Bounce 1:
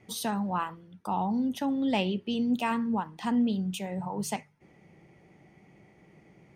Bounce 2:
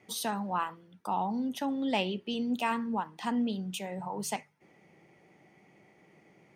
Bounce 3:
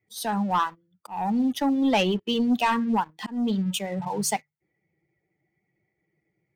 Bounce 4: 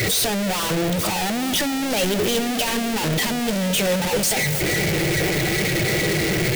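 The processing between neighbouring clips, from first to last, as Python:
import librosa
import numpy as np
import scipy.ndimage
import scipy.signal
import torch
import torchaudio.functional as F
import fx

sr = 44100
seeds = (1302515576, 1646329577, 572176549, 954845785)

y1 = fx.highpass(x, sr, hz=320.0, slope=6)
y2 = fx.bin_expand(y1, sr, power=1.5)
y2 = fx.leveller(y2, sr, passes=2)
y2 = fx.auto_swell(y2, sr, attack_ms=278.0)
y2 = F.gain(torch.from_numpy(y2), 4.5).numpy()
y3 = np.sign(y2) * np.sqrt(np.mean(np.square(y2)))
y3 = fx.graphic_eq_10(y3, sr, hz=(250, 500, 1000), db=(-5, 5, -10))
y3 = fx.echo_alternate(y3, sr, ms=216, hz=830.0, feedback_pct=82, wet_db=-13.5)
y3 = F.gain(torch.from_numpy(y3), 7.5).numpy()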